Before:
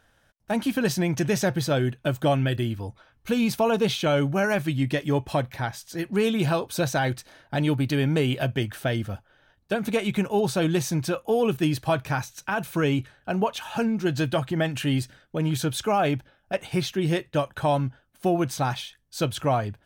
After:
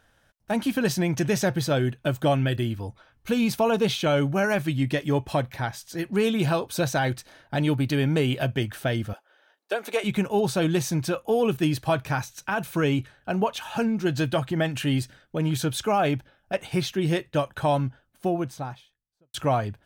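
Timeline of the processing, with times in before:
9.13–10.04 s: high-pass 370 Hz 24 dB/octave
17.80–19.34 s: studio fade out

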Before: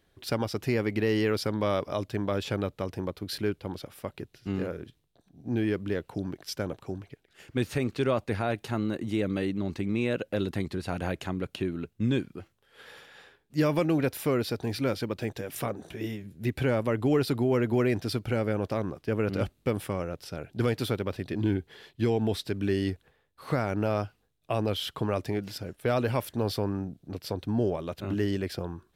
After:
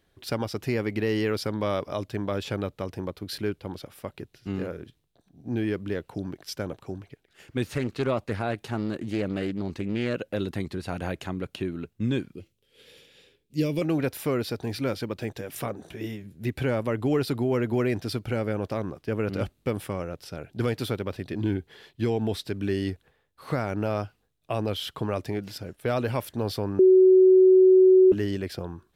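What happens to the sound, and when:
7.71–10.15 s: loudspeaker Doppler distortion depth 0.27 ms
12.35–13.82 s: high-order bell 1.1 kHz -15 dB
26.79–28.12 s: bleep 374 Hz -12 dBFS

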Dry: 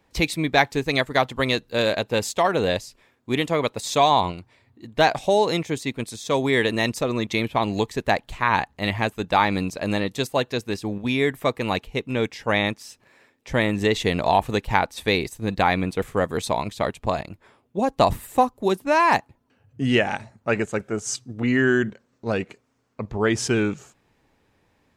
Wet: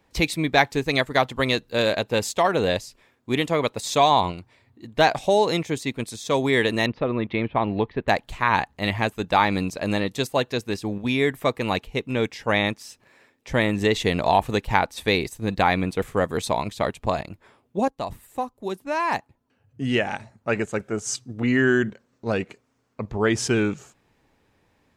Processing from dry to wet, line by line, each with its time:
6.86–8.08 s: Bessel low-pass 2.1 kHz, order 8
17.88–21.14 s: fade in, from -14 dB

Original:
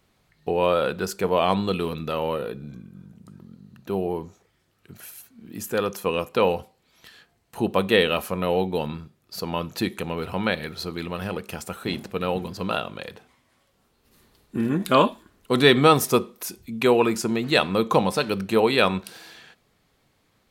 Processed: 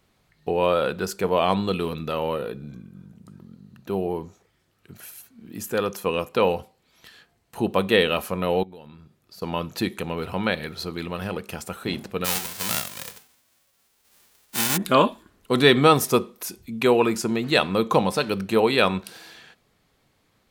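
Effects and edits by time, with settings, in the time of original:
8.63–9.42 s: compression 3:1, threshold -46 dBFS
12.24–14.76 s: formants flattened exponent 0.1

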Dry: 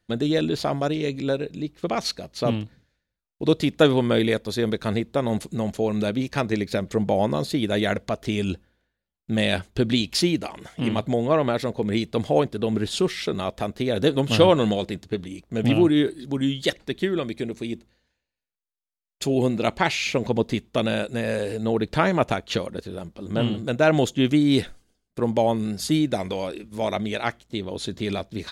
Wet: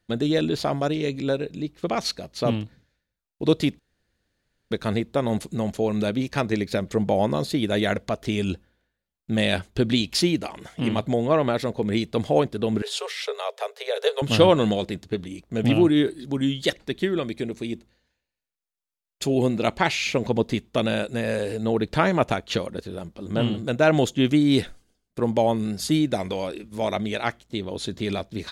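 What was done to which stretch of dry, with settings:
3.79–4.71 s: room tone
12.82–14.22 s: Chebyshev high-pass 410 Hz, order 10

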